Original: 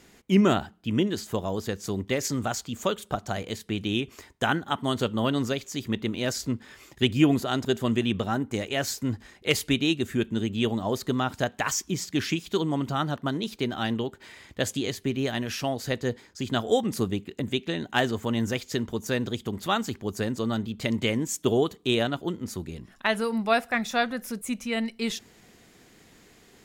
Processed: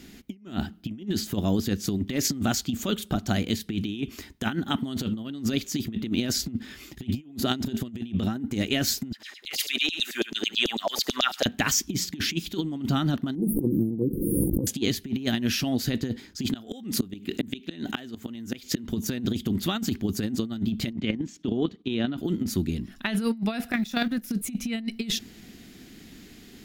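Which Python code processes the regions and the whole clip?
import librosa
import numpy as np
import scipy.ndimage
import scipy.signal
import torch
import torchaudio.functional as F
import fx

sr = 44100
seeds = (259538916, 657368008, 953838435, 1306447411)

y = fx.chain(x, sr, fx.echo_feedback(ms=72, feedback_pct=24, wet_db=-15),
    fx.filter_lfo_highpass(shape='saw_down', hz=9.1, low_hz=470.0, high_hz=5800.0, q=3.5), at=(9.12, 11.46))
y = fx.chain(y, sr, fx.brickwall_bandstop(low_hz=560.0, high_hz=8800.0),
    fx.comb(ms=6.2, depth=0.63),
    fx.pre_swell(db_per_s=29.0), at=(13.35, 14.67))
y = fx.chain(y, sr, fx.low_shelf(hz=210.0, db=-7.5),
    fx.gate_flip(shuts_db=-20.0, range_db=-38),
    fx.env_flatten(amount_pct=50), at=(16.46, 18.89))
y = fx.chain(y, sr, fx.highpass(hz=100.0, slope=12),
    fx.level_steps(step_db=13),
    fx.air_absorb(metres=160.0), at=(20.92, 22.18))
y = fx.chain(y, sr, fx.law_mismatch(coded='A'),
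    fx.level_steps(step_db=12), at=(23.72, 24.31))
y = fx.graphic_eq_10(y, sr, hz=(125, 250, 500, 1000, 2000, 8000), db=(-5, 6, -10, -11, -4, -8))
y = fx.over_compress(y, sr, threshold_db=-32.0, ratio=-0.5)
y = F.gain(torch.from_numpy(y), 6.0).numpy()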